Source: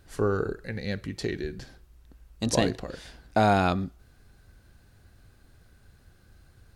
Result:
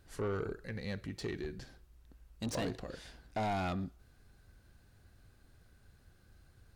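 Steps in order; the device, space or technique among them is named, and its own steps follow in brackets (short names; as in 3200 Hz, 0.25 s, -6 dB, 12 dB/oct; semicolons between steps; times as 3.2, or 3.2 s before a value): saturation between pre-emphasis and de-emphasis (high shelf 3600 Hz +10 dB; soft clip -24.5 dBFS, distortion -7 dB; high shelf 3600 Hz -10 dB); gain -6 dB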